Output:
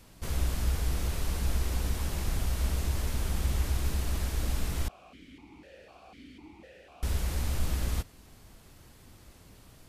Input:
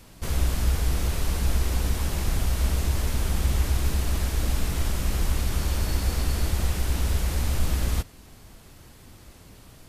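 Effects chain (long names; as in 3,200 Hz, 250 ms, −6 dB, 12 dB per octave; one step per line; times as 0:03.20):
0:04.88–0:07.03: formant filter that steps through the vowels 4 Hz
level −5.5 dB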